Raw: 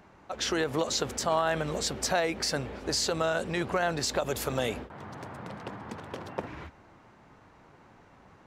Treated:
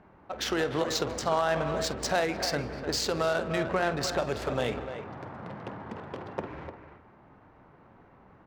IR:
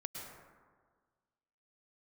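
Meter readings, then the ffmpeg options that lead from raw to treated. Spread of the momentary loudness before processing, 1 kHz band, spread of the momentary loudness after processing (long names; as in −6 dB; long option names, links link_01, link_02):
15 LU, +0.5 dB, 14 LU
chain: -filter_complex "[0:a]asplit=2[link_01][link_02];[link_02]adelay=300,highpass=300,lowpass=3400,asoftclip=type=hard:threshold=-23dB,volume=-8dB[link_03];[link_01][link_03]amix=inputs=2:normalize=0,asplit=2[link_04][link_05];[1:a]atrim=start_sample=2205,afade=type=out:start_time=0.37:duration=0.01,atrim=end_sample=16758,adelay=48[link_06];[link_05][link_06]afir=irnorm=-1:irlink=0,volume=-8dB[link_07];[link_04][link_07]amix=inputs=2:normalize=0,adynamicsmooth=sensitivity=5.5:basefreq=2200"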